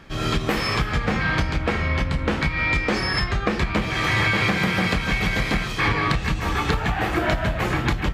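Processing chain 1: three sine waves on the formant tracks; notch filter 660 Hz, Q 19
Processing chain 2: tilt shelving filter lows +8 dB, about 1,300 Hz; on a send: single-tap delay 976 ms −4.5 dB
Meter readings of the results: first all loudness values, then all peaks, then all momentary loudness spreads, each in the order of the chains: −20.0, −17.0 LKFS; −5.0, −1.5 dBFS; 10, 2 LU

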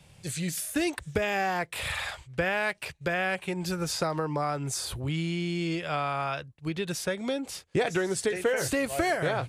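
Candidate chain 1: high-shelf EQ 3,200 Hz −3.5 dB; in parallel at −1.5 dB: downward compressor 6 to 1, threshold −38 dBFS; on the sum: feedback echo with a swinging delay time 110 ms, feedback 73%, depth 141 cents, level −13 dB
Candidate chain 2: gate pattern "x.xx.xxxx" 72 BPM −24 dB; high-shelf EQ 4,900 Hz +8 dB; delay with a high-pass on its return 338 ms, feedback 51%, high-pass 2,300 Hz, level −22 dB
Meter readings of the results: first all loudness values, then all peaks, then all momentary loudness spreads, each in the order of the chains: −28.0, −29.5 LKFS; −12.5, −13.0 dBFS; 6, 7 LU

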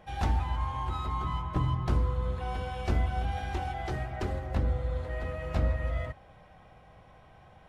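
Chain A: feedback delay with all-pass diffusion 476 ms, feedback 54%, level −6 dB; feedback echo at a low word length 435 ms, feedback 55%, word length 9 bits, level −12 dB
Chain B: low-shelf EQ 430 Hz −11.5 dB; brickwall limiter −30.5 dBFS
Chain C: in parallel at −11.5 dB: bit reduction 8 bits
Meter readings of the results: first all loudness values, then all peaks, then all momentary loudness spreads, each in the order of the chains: −31.0, −40.5, −30.0 LKFS; −15.5, −30.5, −14.5 dBFS; 10, 21, 6 LU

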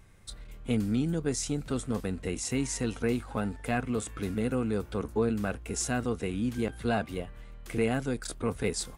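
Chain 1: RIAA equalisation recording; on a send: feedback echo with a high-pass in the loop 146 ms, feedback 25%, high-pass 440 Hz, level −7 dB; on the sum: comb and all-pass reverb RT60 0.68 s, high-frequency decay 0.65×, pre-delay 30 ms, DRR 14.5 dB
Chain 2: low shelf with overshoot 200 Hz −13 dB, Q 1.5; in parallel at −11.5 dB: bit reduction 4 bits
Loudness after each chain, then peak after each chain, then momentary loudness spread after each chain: −28.5, −30.5 LKFS; −8.5, −14.0 dBFS; 13, 8 LU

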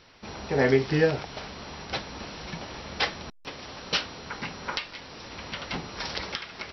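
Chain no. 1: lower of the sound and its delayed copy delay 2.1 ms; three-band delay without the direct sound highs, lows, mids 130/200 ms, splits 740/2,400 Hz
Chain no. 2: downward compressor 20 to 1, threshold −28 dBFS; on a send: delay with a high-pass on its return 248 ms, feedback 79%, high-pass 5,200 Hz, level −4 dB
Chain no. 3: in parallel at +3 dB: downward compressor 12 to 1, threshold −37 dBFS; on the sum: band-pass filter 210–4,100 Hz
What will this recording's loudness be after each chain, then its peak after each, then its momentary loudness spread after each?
−32.0, −35.5, −29.0 LKFS; −11.0, −11.0, −8.5 dBFS; 18, 6, 13 LU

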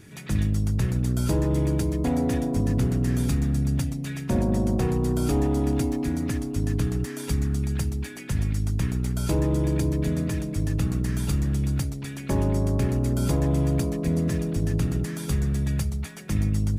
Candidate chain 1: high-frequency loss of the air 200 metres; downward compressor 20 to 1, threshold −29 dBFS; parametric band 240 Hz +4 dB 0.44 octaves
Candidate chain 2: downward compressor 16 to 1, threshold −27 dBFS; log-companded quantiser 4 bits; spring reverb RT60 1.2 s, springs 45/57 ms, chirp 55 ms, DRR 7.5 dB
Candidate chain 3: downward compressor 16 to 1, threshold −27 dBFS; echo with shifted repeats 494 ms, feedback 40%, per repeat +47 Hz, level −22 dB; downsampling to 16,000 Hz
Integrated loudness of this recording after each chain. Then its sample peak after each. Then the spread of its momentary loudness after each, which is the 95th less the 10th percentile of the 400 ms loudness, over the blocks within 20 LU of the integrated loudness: −33.5, −31.0, −32.5 LKFS; −18.5, −16.5, −17.5 dBFS; 3, 3, 2 LU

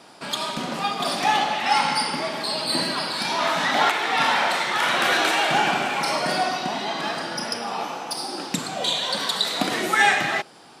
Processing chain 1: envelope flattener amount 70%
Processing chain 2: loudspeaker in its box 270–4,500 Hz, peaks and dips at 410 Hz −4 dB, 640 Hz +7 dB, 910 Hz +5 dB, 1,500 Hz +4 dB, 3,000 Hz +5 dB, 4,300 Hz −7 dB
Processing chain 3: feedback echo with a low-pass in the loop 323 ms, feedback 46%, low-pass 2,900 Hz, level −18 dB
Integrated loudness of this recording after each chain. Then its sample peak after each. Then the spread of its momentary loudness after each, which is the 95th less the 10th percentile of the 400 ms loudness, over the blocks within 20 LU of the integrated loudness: −16.5, −20.0, −22.5 LKFS; −2.5, −2.5, −5.5 dBFS; 3, 10, 9 LU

